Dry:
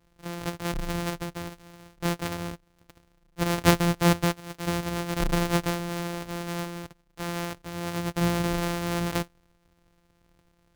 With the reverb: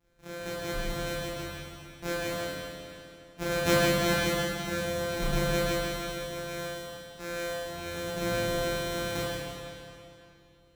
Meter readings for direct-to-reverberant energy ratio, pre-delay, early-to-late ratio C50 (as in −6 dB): −9.0 dB, 9 ms, −4.0 dB